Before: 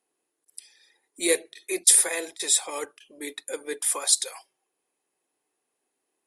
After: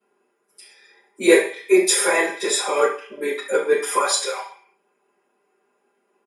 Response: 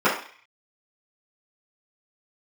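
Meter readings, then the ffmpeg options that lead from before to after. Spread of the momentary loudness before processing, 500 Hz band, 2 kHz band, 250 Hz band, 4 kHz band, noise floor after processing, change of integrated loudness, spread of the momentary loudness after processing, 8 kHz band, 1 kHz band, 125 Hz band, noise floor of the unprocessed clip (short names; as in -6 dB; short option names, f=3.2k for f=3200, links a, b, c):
19 LU, +13.5 dB, +11.0 dB, +13.0 dB, +3.0 dB, -70 dBFS, +3.0 dB, 12 LU, -2.5 dB, +15.0 dB, n/a, -81 dBFS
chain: -filter_complex "[0:a]aecho=1:1:5:0.61[a];[1:a]atrim=start_sample=2205[b];[a][b]afir=irnorm=-1:irlink=0,volume=-7.5dB"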